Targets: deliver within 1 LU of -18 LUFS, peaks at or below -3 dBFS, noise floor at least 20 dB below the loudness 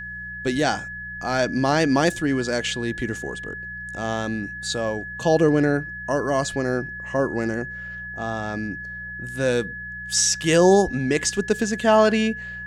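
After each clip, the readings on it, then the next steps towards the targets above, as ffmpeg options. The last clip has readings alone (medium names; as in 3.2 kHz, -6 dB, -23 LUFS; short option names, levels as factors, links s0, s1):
hum 60 Hz; highest harmonic 180 Hz; hum level -41 dBFS; steady tone 1.7 kHz; tone level -32 dBFS; loudness -22.5 LUFS; peak level -5.5 dBFS; loudness target -18.0 LUFS
-> -af "bandreject=f=60:t=h:w=4,bandreject=f=120:t=h:w=4,bandreject=f=180:t=h:w=4"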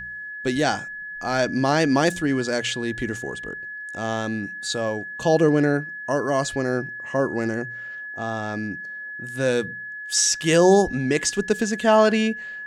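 hum not found; steady tone 1.7 kHz; tone level -32 dBFS
-> -af "bandreject=f=1700:w=30"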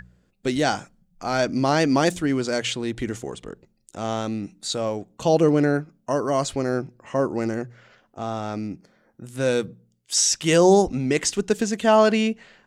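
steady tone not found; loudness -22.5 LUFS; peak level -5.5 dBFS; loudness target -18.0 LUFS
-> -af "volume=1.68,alimiter=limit=0.708:level=0:latency=1"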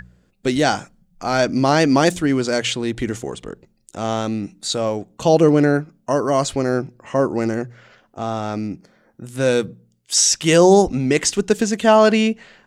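loudness -18.5 LUFS; peak level -3.0 dBFS; noise floor -61 dBFS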